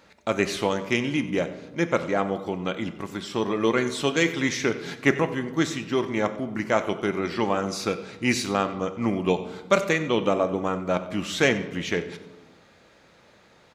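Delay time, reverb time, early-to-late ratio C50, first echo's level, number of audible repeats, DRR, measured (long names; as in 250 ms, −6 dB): 93 ms, 1.2 s, 12.0 dB, −17.0 dB, 1, 9.5 dB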